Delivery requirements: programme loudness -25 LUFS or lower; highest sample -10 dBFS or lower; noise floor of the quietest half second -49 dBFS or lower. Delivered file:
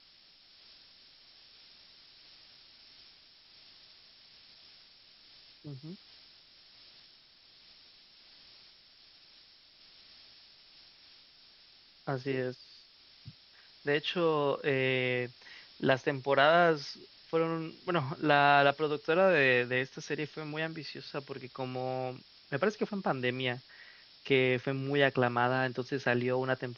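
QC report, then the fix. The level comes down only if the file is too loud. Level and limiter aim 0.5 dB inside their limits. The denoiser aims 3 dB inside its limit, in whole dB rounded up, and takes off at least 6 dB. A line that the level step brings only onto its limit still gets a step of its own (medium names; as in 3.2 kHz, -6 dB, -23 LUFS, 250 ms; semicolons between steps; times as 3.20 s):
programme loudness -30.0 LUFS: pass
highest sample -12.0 dBFS: pass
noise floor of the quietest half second -60 dBFS: pass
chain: none needed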